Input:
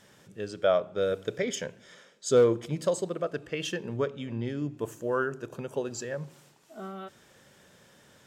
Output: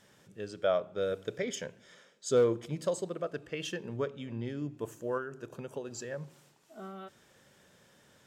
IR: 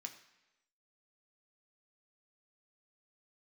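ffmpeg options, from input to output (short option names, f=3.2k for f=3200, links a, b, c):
-filter_complex "[0:a]asettb=1/sr,asplit=3[a][b][c];[a]atrim=end=5.174[d];[b]atrim=start=5.17:end=6,asetpts=PTS-STARTPTS,afade=t=in:d=0.004:c=qsin,afade=t=out:st=0.826:d=0.004:c=qsin,acompressor=threshold=-30dB:ratio=6[e];[c]atrim=start=5.996[f];[d][e]acrossfade=d=0.004:c1=hsin:c2=qsin[g];[g][f]acrossfade=d=0.004:c1=qsin:c2=hsin,volume=-4.5dB"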